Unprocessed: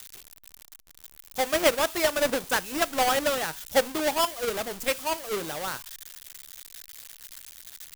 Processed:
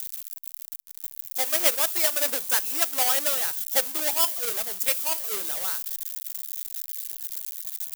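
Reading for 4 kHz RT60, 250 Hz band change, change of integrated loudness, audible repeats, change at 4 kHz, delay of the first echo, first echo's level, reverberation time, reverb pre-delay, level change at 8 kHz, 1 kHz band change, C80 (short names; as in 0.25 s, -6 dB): none, -11.0 dB, +2.5 dB, none, +0.5 dB, none, none, none, none, +6.5 dB, -6.0 dB, none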